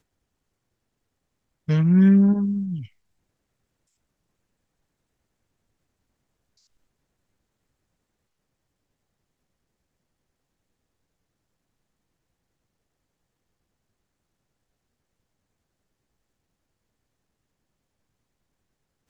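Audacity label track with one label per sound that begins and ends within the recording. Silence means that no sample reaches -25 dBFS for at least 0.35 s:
1.690000	2.760000	sound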